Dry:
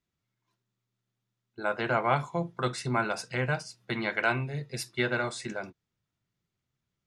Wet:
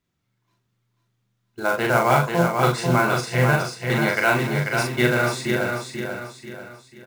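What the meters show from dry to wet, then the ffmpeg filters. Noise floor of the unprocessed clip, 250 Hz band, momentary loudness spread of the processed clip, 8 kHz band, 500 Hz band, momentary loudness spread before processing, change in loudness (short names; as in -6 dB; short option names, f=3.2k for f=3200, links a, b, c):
under -85 dBFS, +11.0 dB, 12 LU, +10.0 dB, +10.5 dB, 8 LU, +9.5 dB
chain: -filter_complex "[0:a]highshelf=f=3.6k:g=-3.5,acontrast=31,acrusher=bits=4:mode=log:mix=0:aa=0.000001,asplit=2[a][b];[b]adelay=41,volume=-2.5dB[c];[a][c]amix=inputs=2:normalize=0,aecho=1:1:490|980|1470|1960|2450:0.562|0.231|0.0945|0.0388|0.0159,volume=1.5dB"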